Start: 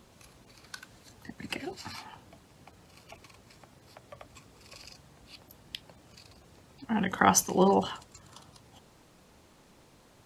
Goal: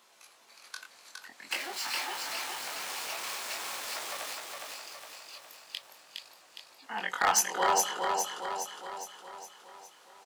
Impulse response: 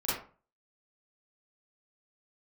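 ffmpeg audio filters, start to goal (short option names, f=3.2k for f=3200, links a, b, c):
-filter_complex "[0:a]asettb=1/sr,asplit=3[a][b][c];[a]atrim=end=1.514[d];[b]atrim=start=1.51:end=4.33,asetpts=PTS-STARTPTS,afade=t=in:d=0.004:c=qsin,afade=t=out:st=2.816:d=0.004:c=qsin,aeval=exprs='val(0)+0.5*0.0224*sgn(val(0))':c=same[e];[c]atrim=start=4.326[f];[d][e]acrossfade=d=0.004:c1=hsin:c2=qsin[g];[g][f]acrossfade=d=0.004:c1=qsin:c2=hsin,highpass=820,asoftclip=type=hard:threshold=-18.5dB,flanger=delay=17.5:depth=6.1:speed=0.46,aecho=1:1:412|824|1236|1648|2060|2472|2884:0.668|0.361|0.195|0.105|0.0568|0.0307|0.0166,volume=4.5dB"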